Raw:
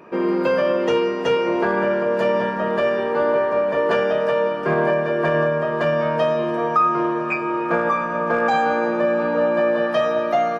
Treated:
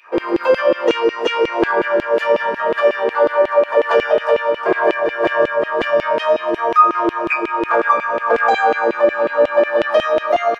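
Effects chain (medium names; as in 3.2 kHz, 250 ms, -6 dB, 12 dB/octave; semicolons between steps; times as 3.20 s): LFO high-pass saw down 5.5 Hz 300–3000 Hz; trim +2 dB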